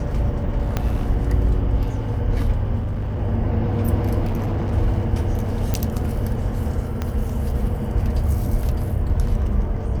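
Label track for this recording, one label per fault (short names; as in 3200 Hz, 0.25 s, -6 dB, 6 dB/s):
0.770000	0.770000	pop -8 dBFS
2.790000	3.210000	clipped -21 dBFS
4.250000	4.740000	clipped -19 dBFS
5.740000	5.740000	pop -8 dBFS
7.020000	7.020000	pop -12 dBFS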